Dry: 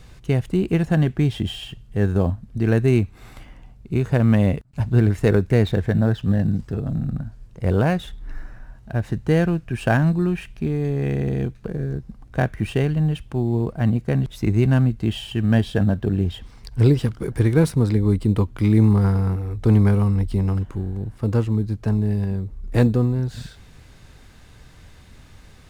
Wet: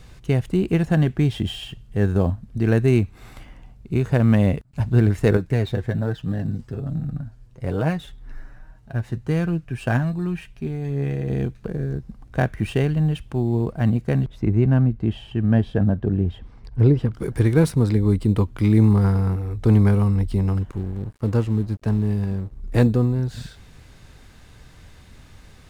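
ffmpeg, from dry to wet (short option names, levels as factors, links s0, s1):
-filter_complex "[0:a]asettb=1/sr,asplit=3[s0][s1][s2];[s0]atrim=end=5.374[s3];[s1]atrim=start=5.37:end=11.3,asetpts=PTS-STARTPTS,afade=t=in:d=0.004:c=qsin,afade=t=out:st=5.926:d=0.004:c=qsin,flanger=delay=6.3:depth=1.9:regen=38:speed=1.2:shape=sinusoidal[s4];[s2]atrim=start=11.296[s5];[s3][s4]acrossfade=d=0.004:c1=hsin:c2=qsin[s6];[s6][s5]acrossfade=d=0.004:c1=qsin:c2=hsin,asplit=3[s7][s8][s9];[s7]afade=t=out:st=14.24:d=0.02[s10];[s8]lowpass=f=1100:p=1,afade=t=in:st=14.24:d=0.02,afade=t=out:st=17.13:d=0.02[s11];[s9]afade=t=in:st=17.13:d=0.02[s12];[s10][s11][s12]amix=inputs=3:normalize=0,asettb=1/sr,asplit=3[s13][s14][s15];[s13]atrim=end=20.714[s16];[s14]atrim=start=20.71:end=22.61,asetpts=PTS-STARTPTS,afade=t=in:d=0.004:c=qsin,afade=t=out:st=1.896:d=0.004:c=qsin,aeval=exprs='sgn(val(0))*max(abs(val(0))-0.0075,0)':c=same[s17];[s15]atrim=start=22.606[s18];[s16][s17]acrossfade=d=0.004:c1=hsin:c2=qsin[s19];[s19][s18]acrossfade=d=0.004:c1=qsin:c2=hsin"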